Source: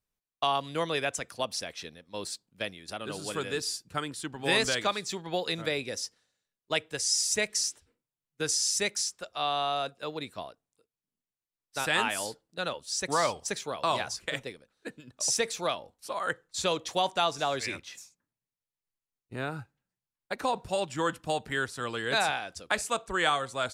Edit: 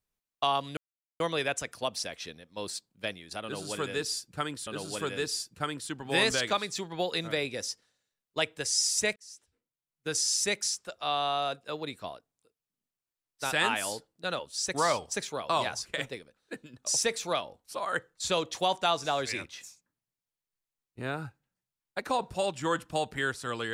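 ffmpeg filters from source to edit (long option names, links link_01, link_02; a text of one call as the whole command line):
ffmpeg -i in.wav -filter_complex "[0:a]asplit=4[link_01][link_02][link_03][link_04];[link_01]atrim=end=0.77,asetpts=PTS-STARTPTS,afade=type=out:start_time=0.766:duration=0.004:curve=hsin,apad=pad_dur=0.43[link_05];[link_02]atrim=start=0.77:end=4.242,asetpts=PTS-STARTPTS,afade=type=in:duration=0.004:curve=hsin[link_06];[link_03]atrim=start=3.008:end=7.5,asetpts=PTS-STARTPTS,afade=type=out:start_time=4.488:duration=0.004:curve=hsin[link_07];[link_04]atrim=start=7.5,asetpts=PTS-STARTPTS,afade=type=in:duration=1.12[link_08];[link_05][link_06]concat=n=2:v=0:a=1[link_09];[link_07][link_08]concat=n=2:v=0:a=1[link_10];[link_09][link_10]acrossfade=duration=0.004:curve1=hsin:curve2=hsin" out.wav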